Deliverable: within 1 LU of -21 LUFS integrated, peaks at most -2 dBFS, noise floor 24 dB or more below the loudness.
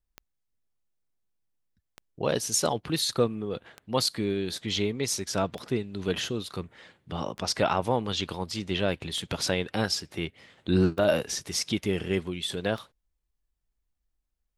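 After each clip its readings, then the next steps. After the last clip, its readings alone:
clicks found 8; loudness -29.0 LUFS; peak level -10.0 dBFS; loudness target -21.0 LUFS
-> de-click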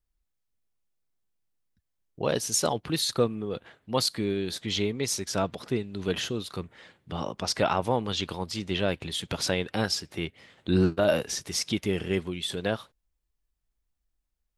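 clicks found 0; loudness -28.5 LUFS; peak level -10.0 dBFS; loudness target -21.0 LUFS
-> trim +7.5 dB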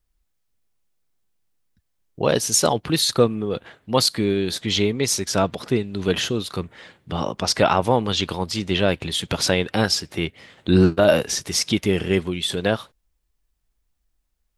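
loudness -21.0 LUFS; peak level -2.5 dBFS; noise floor -72 dBFS

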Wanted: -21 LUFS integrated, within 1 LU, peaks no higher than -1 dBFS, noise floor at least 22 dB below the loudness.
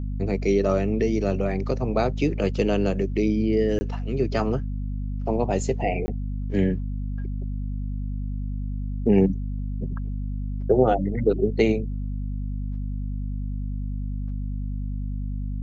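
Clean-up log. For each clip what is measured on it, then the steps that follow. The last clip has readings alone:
dropouts 2; longest dropout 20 ms; hum 50 Hz; highest harmonic 250 Hz; hum level -26 dBFS; loudness -26.0 LUFS; peak level -6.0 dBFS; loudness target -21.0 LUFS
-> interpolate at 3.79/6.06 s, 20 ms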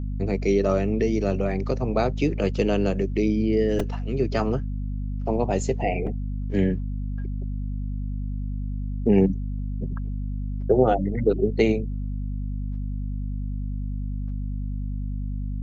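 dropouts 0; hum 50 Hz; highest harmonic 250 Hz; hum level -26 dBFS
-> hum notches 50/100/150/200/250 Hz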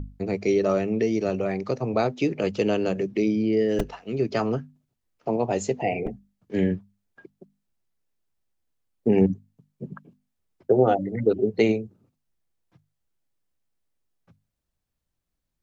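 hum not found; loudness -25.0 LUFS; peak level -6.5 dBFS; loudness target -21.0 LUFS
-> trim +4 dB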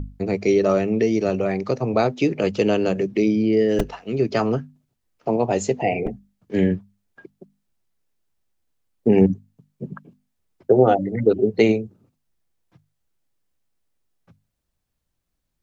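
loudness -21.0 LUFS; peak level -2.5 dBFS; noise floor -77 dBFS

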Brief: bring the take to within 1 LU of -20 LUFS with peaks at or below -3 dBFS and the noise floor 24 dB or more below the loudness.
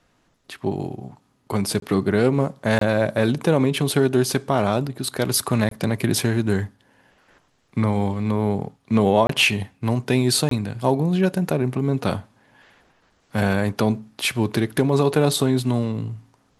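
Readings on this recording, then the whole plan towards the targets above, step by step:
dropouts 5; longest dropout 23 ms; loudness -21.5 LUFS; peak level -5.0 dBFS; loudness target -20.0 LUFS
-> interpolate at 1.80/2.79/5.69/9.27/10.49 s, 23 ms; trim +1.5 dB

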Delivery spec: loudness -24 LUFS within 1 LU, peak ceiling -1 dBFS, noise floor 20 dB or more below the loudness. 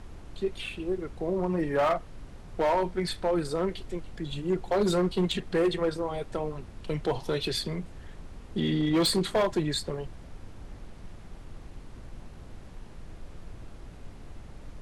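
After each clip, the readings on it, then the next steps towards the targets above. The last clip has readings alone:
clipped samples 1.4%; clipping level -20.0 dBFS; noise floor -46 dBFS; noise floor target -49 dBFS; loudness -29.0 LUFS; peak level -20.0 dBFS; loudness target -24.0 LUFS
-> clip repair -20 dBFS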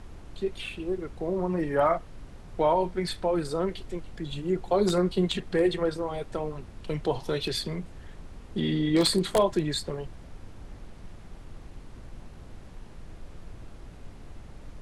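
clipped samples 0.0%; noise floor -46 dBFS; noise floor target -49 dBFS
-> noise print and reduce 6 dB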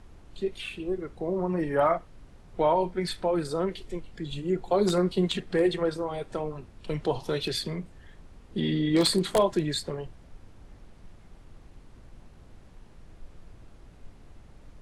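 noise floor -52 dBFS; loudness -28.0 LUFS; peak level -11.0 dBFS; loudness target -24.0 LUFS
-> trim +4 dB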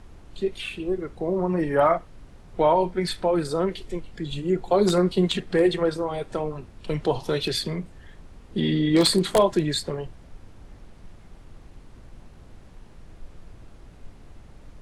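loudness -24.0 LUFS; peak level -7.0 dBFS; noise floor -48 dBFS

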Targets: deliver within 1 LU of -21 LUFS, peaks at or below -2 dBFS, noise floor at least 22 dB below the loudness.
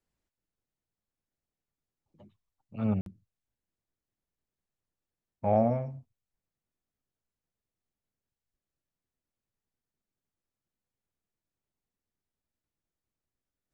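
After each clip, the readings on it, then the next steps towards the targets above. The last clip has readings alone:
dropouts 1; longest dropout 52 ms; loudness -30.0 LUFS; peak level -14.0 dBFS; loudness target -21.0 LUFS
-> interpolate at 3.01 s, 52 ms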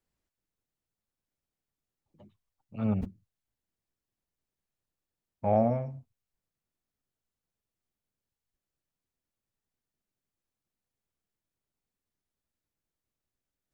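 dropouts 0; loudness -30.0 LUFS; peak level -14.0 dBFS; loudness target -21.0 LUFS
-> trim +9 dB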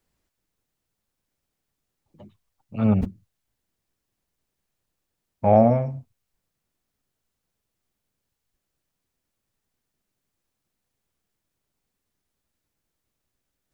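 loudness -21.0 LUFS; peak level -5.0 dBFS; noise floor -82 dBFS

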